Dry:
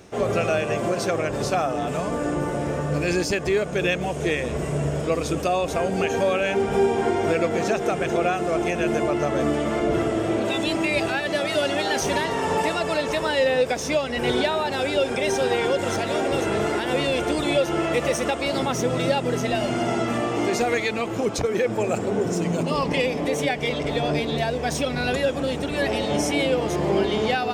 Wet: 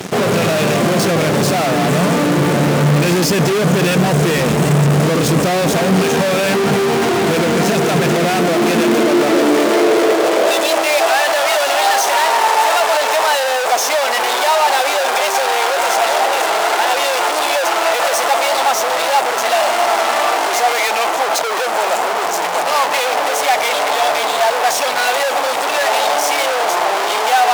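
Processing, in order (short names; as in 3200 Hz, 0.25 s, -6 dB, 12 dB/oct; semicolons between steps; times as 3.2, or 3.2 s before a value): fuzz box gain 45 dB, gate -46 dBFS; high-pass sweep 160 Hz -> 770 Hz, 8.05–11.27; gain -2 dB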